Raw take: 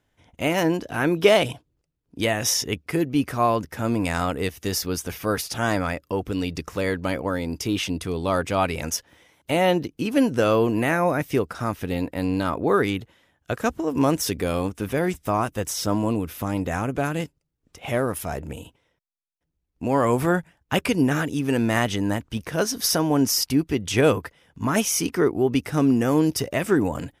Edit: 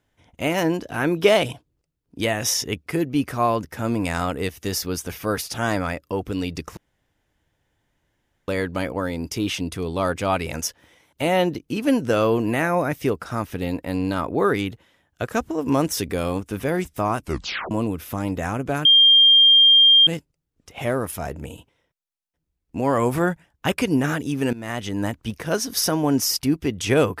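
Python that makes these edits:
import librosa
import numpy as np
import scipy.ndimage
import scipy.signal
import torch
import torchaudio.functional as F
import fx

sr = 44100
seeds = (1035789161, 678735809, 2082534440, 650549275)

y = fx.edit(x, sr, fx.insert_room_tone(at_s=6.77, length_s=1.71),
    fx.tape_stop(start_s=15.48, length_s=0.52),
    fx.insert_tone(at_s=17.14, length_s=1.22, hz=3200.0, db=-9.5),
    fx.fade_in_from(start_s=21.6, length_s=0.55, floor_db=-18.0), tone=tone)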